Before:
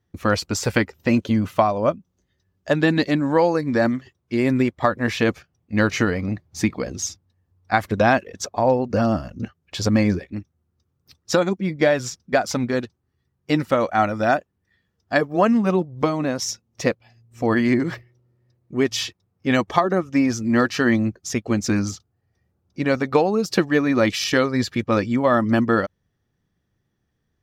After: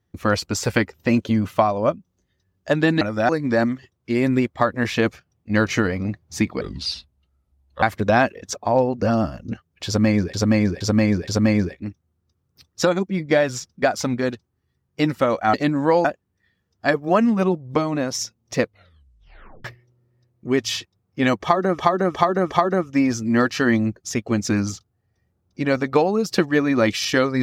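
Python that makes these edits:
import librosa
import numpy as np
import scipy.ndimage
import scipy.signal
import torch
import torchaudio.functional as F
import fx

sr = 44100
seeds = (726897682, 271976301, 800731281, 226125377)

y = fx.edit(x, sr, fx.swap(start_s=3.01, length_s=0.51, other_s=14.04, other_length_s=0.28),
    fx.speed_span(start_s=6.84, length_s=0.9, speed=0.74),
    fx.repeat(start_s=9.78, length_s=0.47, count=4),
    fx.tape_stop(start_s=16.89, length_s=1.03),
    fx.repeat(start_s=19.7, length_s=0.36, count=4), tone=tone)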